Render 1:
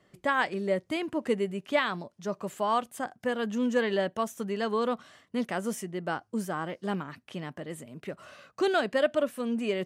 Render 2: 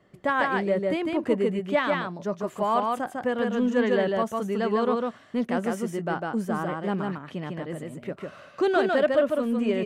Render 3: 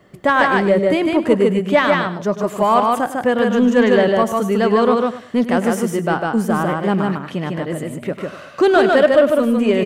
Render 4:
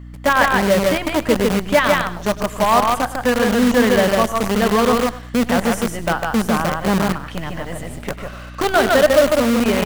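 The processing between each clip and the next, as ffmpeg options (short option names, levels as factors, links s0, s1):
-filter_complex "[0:a]aecho=1:1:151:0.708,asplit=2[s0][s1];[s1]asoftclip=type=tanh:threshold=0.0531,volume=0.282[s2];[s0][s2]amix=inputs=2:normalize=0,highshelf=f=2800:g=-10,volume=1.26"
-filter_complex "[0:a]aecho=1:1:101|202|303:0.2|0.0499|0.0125,crystalizer=i=0.5:c=0,asplit=2[s0][s1];[s1]asoftclip=type=tanh:threshold=0.106,volume=0.355[s2];[s0][s2]amix=inputs=2:normalize=0,volume=2.37"
-filter_complex "[0:a]equalizer=f=360:w=4.2:g=-10.5,acrossover=split=790[s0][s1];[s0]acrusher=bits=4:dc=4:mix=0:aa=0.000001[s2];[s2][s1]amix=inputs=2:normalize=0,aeval=exprs='val(0)+0.02*(sin(2*PI*60*n/s)+sin(2*PI*2*60*n/s)/2+sin(2*PI*3*60*n/s)/3+sin(2*PI*4*60*n/s)/4+sin(2*PI*5*60*n/s)/5)':c=same"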